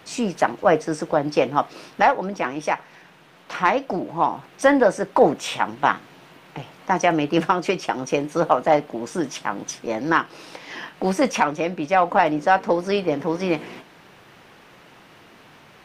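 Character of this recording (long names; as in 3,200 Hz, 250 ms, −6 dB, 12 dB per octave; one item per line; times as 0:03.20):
background noise floor −50 dBFS
spectral slope −4.0 dB per octave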